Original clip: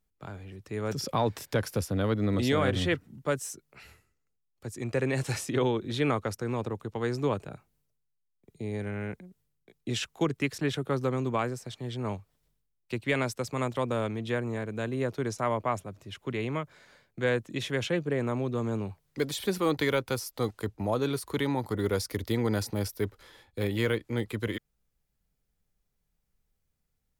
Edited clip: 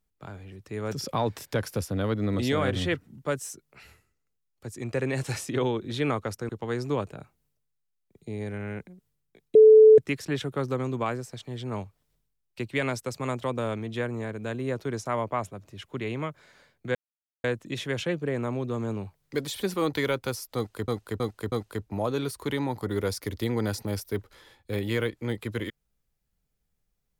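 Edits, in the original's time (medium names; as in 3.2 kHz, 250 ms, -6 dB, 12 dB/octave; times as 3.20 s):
6.49–6.82 s: delete
9.88–10.31 s: bleep 435 Hz -9.5 dBFS
17.28 s: insert silence 0.49 s
20.40–20.72 s: loop, 4 plays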